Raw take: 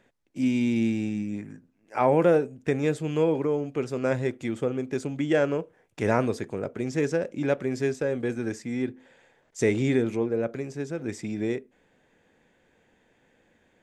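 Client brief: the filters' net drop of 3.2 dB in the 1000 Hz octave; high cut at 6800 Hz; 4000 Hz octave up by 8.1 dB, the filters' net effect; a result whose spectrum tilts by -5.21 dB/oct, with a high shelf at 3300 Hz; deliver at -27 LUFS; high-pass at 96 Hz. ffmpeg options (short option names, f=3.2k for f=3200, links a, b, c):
-af "highpass=96,lowpass=6.8k,equalizer=f=1k:t=o:g=-5.5,highshelf=f=3.3k:g=9,equalizer=f=4k:t=o:g=5,volume=0.5dB"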